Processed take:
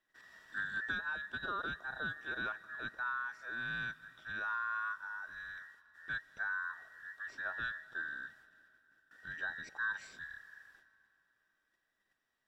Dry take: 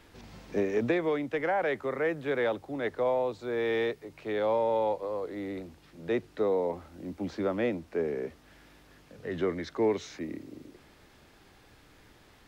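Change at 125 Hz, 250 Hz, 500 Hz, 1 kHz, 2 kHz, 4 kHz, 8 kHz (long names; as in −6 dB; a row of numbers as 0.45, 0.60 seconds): −15.0 dB, −22.5 dB, −29.0 dB, −7.5 dB, +3.0 dB, −4.5 dB, can't be measured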